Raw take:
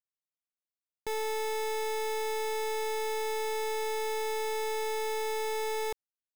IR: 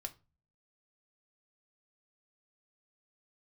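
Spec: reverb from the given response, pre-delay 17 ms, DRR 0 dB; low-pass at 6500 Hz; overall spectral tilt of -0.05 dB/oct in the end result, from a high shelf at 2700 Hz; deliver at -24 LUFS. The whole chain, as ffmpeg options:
-filter_complex "[0:a]lowpass=6.5k,highshelf=f=2.7k:g=-7.5,asplit=2[a][b];[1:a]atrim=start_sample=2205,adelay=17[c];[b][c]afir=irnorm=-1:irlink=0,volume=2.5dB[d];[a][d]amix=inputs=2:normalize=0,volume=9dB"

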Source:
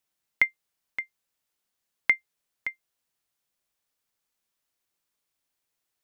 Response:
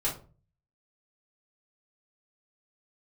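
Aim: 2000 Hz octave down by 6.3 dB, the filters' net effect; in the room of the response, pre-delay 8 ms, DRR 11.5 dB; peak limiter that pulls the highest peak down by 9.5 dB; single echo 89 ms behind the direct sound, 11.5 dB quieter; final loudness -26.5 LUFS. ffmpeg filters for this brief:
-filter_complex "[0:a]equalizer=f=2k:t=o:g=-6.5,alimiter=limit=-20.5dB:level=0:latency=1,aecho=1:1:89:0.266,asplit=2[a][b];[1:a]atrim=start_sample=2205,adelay=8[c];[b][c]afir=irnorm=-1:irlink=0,volume=-18dB[d];[a][d]amix=inputs=2:normalize=0,volume=14.5dB"

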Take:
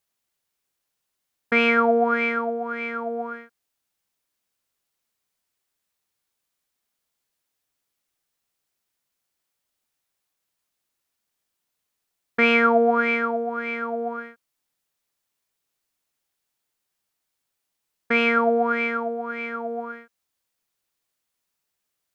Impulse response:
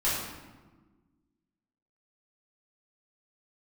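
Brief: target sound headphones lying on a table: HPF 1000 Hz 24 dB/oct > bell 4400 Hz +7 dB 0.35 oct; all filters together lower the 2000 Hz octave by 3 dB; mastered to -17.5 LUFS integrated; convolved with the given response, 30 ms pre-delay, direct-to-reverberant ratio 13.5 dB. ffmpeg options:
-filter_complex "[0:a]equalizer=f=2k:t=o:g=-4,asplit=2[a][b];[1:a]atrim=start_sample=2205,adelay=30[c];[b][c]afir=irnorm=-1:irlink=0,volume=-24dB[d];[a][d]amix=inputs=2:normalize=0,highpass=f=1k:w=0.5412,highpass=f=1k:w=1.3066,equalizer=f=4.4k:t=o:w=0.35:g=7,volume=10dB"

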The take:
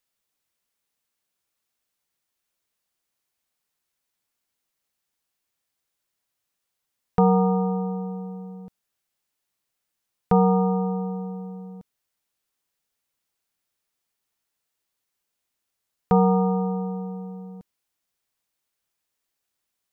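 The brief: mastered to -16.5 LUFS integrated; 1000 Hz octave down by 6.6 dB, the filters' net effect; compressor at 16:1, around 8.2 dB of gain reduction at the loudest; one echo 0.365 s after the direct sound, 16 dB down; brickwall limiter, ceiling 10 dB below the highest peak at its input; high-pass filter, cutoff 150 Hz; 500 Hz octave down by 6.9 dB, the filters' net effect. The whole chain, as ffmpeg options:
-af "highpass=150,equalizer=f=500:t=o:g=-6,equalizer=f=1k:t=o:g=-6.5,acompressor=threshold=-25dB:ratio=16,alimiter=level_in=1.5dB:limit=-24dB:level=0:latency=1,volume=-1.5dB,aecho=1:1:365:0.158,volume=18.5dB"

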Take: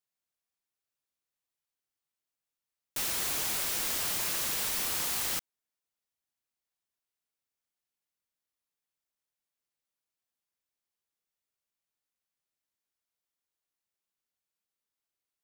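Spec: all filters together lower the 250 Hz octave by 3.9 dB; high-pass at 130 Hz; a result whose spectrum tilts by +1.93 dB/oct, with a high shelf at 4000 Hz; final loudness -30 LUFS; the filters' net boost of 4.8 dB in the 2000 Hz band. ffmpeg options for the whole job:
-af "highpass=130,equalizer=f=250:t=o:g=-5,equalizer=f=2k:t=o:g=4,highshelf=f=4k:g=8,volume=-7.5dB"

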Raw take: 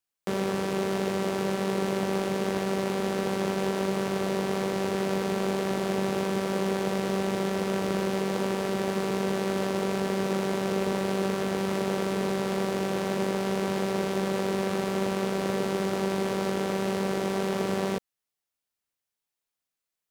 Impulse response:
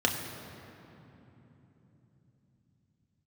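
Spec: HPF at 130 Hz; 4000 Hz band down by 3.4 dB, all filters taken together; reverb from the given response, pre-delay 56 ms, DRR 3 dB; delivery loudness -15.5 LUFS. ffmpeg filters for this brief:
-filter_complex "[0:a]highpass=130,equalizer=f=4k:t=o:g=-4.5,asplit=2[a][b];[1:a]atrim=start_sample=2205,adelay=56[c];[b][c]afir=irnorm=-1:irlink=0,volume=-14dB[d];[a][d]amix=inputs=2:normalize=0,volume=14dB"

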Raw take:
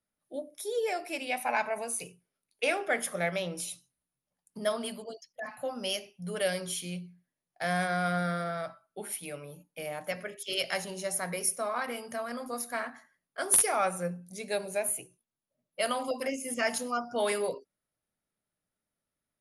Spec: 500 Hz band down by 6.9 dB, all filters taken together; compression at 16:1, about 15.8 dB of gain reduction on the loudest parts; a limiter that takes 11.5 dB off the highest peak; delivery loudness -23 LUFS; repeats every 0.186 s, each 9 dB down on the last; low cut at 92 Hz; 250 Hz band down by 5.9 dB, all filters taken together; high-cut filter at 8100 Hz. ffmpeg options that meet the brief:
-af "highpass=92,lowpass=8.1k,equalizer=f=250:t=o:g=-7,equalizer=f=500:t=o:g=-7.5,acompressor=threshold=-41dB:ratio=16,alimiter=level_in=16dB:limit=-24dB:level=0:latency=1,volume=-16dB,aecho=1:1:186|372|558|744:0.355|0.124|0.0435|0.0152,volume=26.5dB"

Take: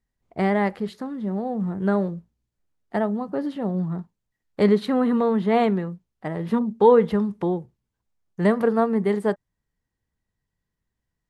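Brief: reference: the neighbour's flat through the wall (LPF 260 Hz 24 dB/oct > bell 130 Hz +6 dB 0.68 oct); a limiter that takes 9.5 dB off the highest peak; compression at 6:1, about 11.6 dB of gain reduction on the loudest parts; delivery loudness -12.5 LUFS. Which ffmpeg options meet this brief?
-af "acompressor=threshold=-23dB:ratio=6,alimiter=limit=-22.5dB:level=0:latency=1,lowpass=f=260:w=0.5412,lowpass=f=260:w=1.3066,equalizer=f=130:t=o:w=0.68:g=6,volume=20dB"

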